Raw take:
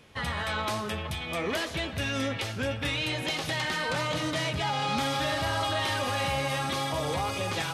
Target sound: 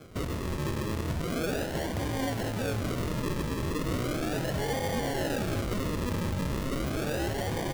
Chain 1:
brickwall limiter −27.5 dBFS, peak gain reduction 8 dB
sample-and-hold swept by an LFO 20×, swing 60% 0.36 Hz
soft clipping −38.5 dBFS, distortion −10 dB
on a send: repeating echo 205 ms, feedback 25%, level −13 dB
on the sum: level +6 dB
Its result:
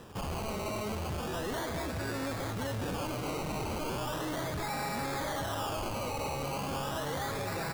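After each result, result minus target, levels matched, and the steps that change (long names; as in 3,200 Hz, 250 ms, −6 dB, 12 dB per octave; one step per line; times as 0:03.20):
soft clipping: distortion +11 dB; sample-and-hold swept by an LFO: distortion −7 dB
change: soft clipping −29 dBFS, distortion −21 dB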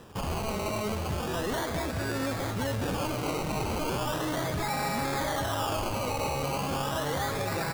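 sample-and-hold swept by an LFO: distortion −7 dB
change: sample-and-hold swept by an LFO 47×, swing 60% 0.36 Hz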